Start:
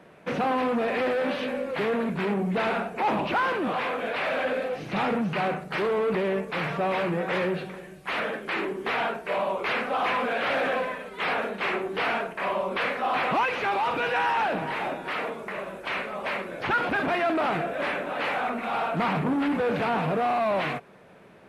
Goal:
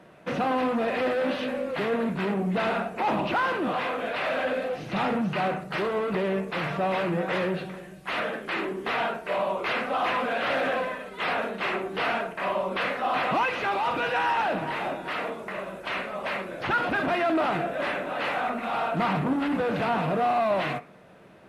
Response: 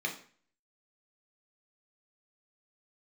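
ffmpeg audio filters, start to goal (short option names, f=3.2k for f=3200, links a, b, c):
-filter_complex "[0:a]asplit=2[a][b];[1:a]atrim=start_sample=2205,lowpass=3k[c];[b][c]afir=irnorm=-1:irlink=0,volume=-14.5dB[d];[a][d]amix=inputs=2:normalize=0"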